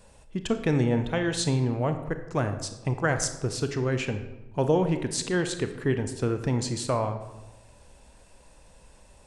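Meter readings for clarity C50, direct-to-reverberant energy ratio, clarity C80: 9.5 dB, 8.0 dB, 12.0 dB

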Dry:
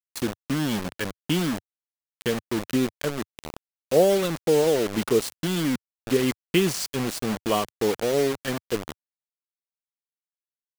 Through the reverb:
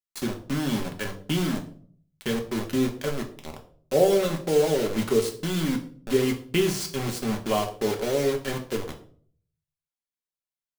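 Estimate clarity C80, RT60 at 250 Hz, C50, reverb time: 15.5 dB, 0.65 s, 12.0 dB, 0.50 s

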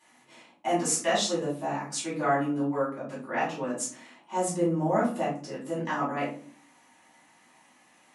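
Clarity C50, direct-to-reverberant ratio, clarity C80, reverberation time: 5.0 dB, −10.0 dB, 11.0 dB, 0.45 s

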